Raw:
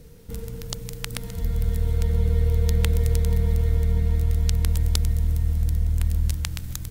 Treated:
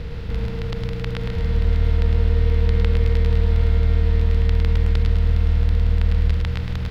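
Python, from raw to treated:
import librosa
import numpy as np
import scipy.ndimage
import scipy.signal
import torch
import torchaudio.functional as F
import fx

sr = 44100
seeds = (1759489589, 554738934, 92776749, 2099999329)

p1 = fx.bin_compress(x, sr, power=0.4)
p2 = fx.air_absorb(p1, sr, metres=350.0)
y = p2 + fx.echo_single(p2, sr, ms=107, db=-5.0, dry=0)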